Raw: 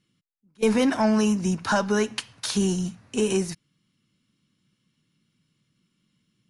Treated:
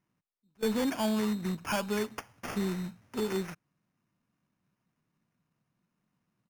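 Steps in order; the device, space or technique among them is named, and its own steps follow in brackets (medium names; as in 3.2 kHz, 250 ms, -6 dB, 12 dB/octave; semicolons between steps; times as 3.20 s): crushed at another speed (playback speed 0.8×; sample-and-hold 14×; playback speed 1.25×); trim -8.5 dB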